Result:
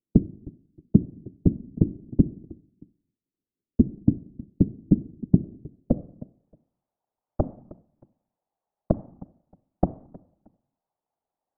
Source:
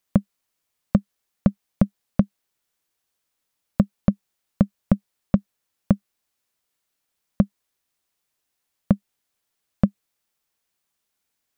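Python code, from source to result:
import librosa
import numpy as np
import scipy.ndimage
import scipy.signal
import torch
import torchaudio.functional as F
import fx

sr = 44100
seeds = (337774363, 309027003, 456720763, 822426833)

p1 = fx.rider(x, sr, range_db=10, speed_s=0.5)
p2 = fx.filter_sweep_lowpass(p1, sr, from_hz=280.0, to_hz=760.0, start_s=5.2, end_s=6.49, q=4.3)
p3 = p2 + fx.echo_feedback(p2, sr, ms=313, feedback_pct=26, wet_db=-20.5, dry=0)
p4 = fx.rev_schroeder(p3, sr, rt60_s=0.66, comb_ms=28, drr_db=16.0)
p5 = fx.whisperise(p4, sr, seeds[0])
y = F.gain(torch.from_numpy(p5), -5.0).numpy()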